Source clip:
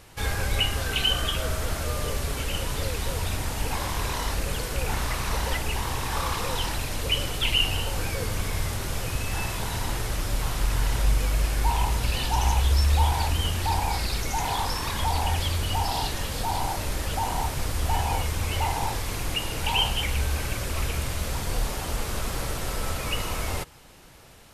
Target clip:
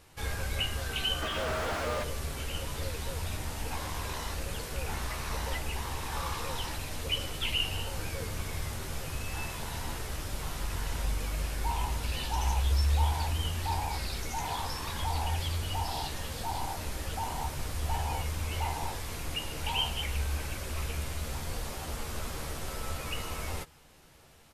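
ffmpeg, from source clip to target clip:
ffmpeg -i in.wav -filter_complex "[0:a]asplit=3[link_01][link_02][link_03];[link_01]afade=type=out:start_time=1.21:duration=0.02[link_04];[link_02]asplit=2[link_05][link_06];[link_06]highpass=frequency=720:poles=1,volume=34dB,asoftclip=type=tanh:threshold=-14.5dB[link_07];[link_05][link_07]amix=inputs=2:normalize=0,lowpass=frequency=1200:poles=1,volume=-6dB,afade=type=in:start_time=1.21:duration=0.02,afade=type=out:start_time=2.02:duration=0.02[link_08];[link_03]afade=type=in:start_time=2.02:duration=0.02[link_09];[link_04][link_08][link_09]amix=inputs=3:normalize=0,asplit=2[link_10][link_11];[link_11]adelay=13,volume=-7dB[link_12];[link_10][link_12]amix=inputs=2:normalize=0,volume=-8dB" out.wav

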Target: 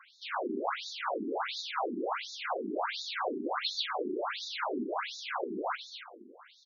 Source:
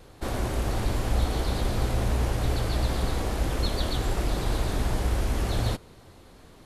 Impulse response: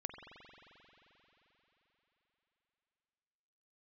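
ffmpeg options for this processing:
-af "equalizer=frequency=1400:width=0.6:gain=10.5,bandreject=frequency=1800:width=8.9,aecho=1:1:276|552|828:0.355|0.103|0.0298,afftfilt=real='re*between(b*sr/1024,280*pow(5000/280,0.5+0.5*sin(2*PI*1.4*pts/sr))/1.41,280*pow(5000/280,0.5+0.5*sin(2*PI*1.4*pts/sr))*1.41)':imag='im*between(b*sr/1024,280*pow(5000/280,0.5+0.5*sin(2*PI*1.4*pts/sr))/1.41,280*pow(5000/280,0.5+0.5*sin(2*PI*1.4*pts/sr))*1.41)':win_size=1024:overlap=0.75"

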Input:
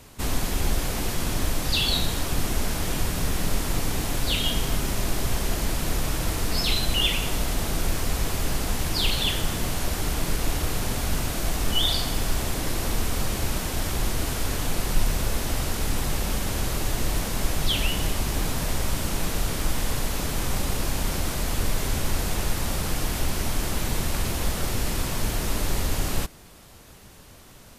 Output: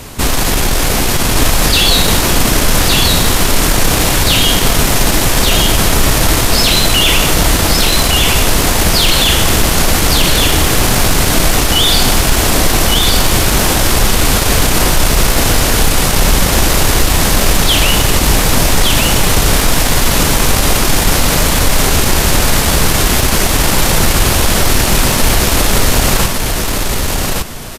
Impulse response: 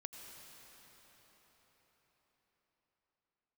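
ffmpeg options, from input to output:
-filter_complex "[0:a]apsyclip=26dB,asplit=2[link_01][link_02];[link_02]aecho=0:1:1162|2324|3486:0.708|0.12|0.0205[link_03];[link_01][link_03]amix=inputs=2:normalize=0,volume=-7.5dB"

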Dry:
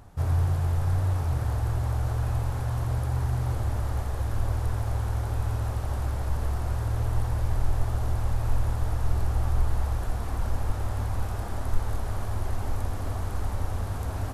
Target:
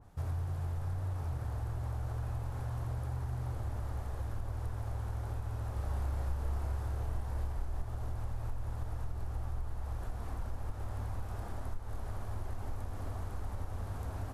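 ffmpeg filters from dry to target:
ffmpeg -i in.wav -filter_complex "[0:a]acompressor=threshold=-25dB:ratio=5,asettb=1/sr,asplit=3[link_01][link_02][link_03];[link_01]atrim=end=5.734[link_04];[link_02]atrim=start=5.73:end=7.82,asetpts=PTS-STARTPTS,afade=type=in:duration=0.004:curve=qsin,afade=type=out:start_time=2.086:duration=0.004:curve=qsin,asplit=2[link_05][link_06];[link_06]adelay=31,volume=-3dB[link_07];[link_05][link_07]amix=inputs=2:normalize=0,atrim=end_sample=92169[link_08];[link_03]atrim=start=7.816[link_09];[link_04][link_08]acrossfade=duration=0.004:curve1=hsin:curve2=qsin[link_10];[link_10][link_09]acrossfade=duration=0.004:curve1=qsin:curve2=hsin,adynamicequalizer=threshold=0.00158:dfrequency=2000:dqfactor=0.7:tfrequency=2000:tqfactor=0.7:attack=5:release=100:ratio=0.375:range=1.5:mode=cutabove:tftype=highshelf,volume=-7.5dB" out.wav

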